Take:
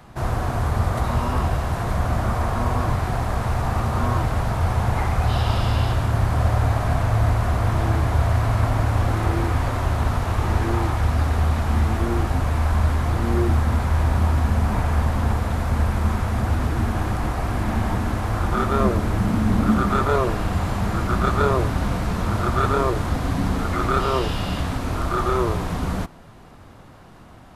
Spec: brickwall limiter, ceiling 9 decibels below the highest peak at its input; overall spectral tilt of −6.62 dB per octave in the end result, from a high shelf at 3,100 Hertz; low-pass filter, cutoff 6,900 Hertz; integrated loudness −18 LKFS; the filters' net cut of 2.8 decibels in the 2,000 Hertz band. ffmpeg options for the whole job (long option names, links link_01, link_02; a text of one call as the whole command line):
ffmpeg -i in.wav -af "lowpass=6900,equalizer=frequency=2000:width_type=o:gain=-5,highshelf=frequency=3100:gain=3.5,volume=7dB,alimiter=limit=-8.5dB:level=0:latency=1" out.wav